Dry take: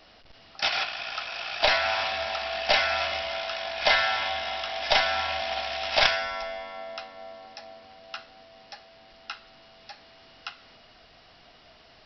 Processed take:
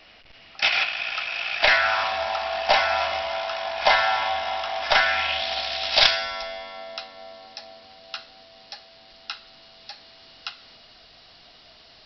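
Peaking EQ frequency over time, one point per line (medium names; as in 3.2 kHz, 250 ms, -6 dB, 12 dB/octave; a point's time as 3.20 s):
peaking EQ +9 dB 0.91 oct
1.52 s 2.4 kHz
2.18 s 920 Hz
4.76 s 920 Hz
5.49 s 4.2 kHz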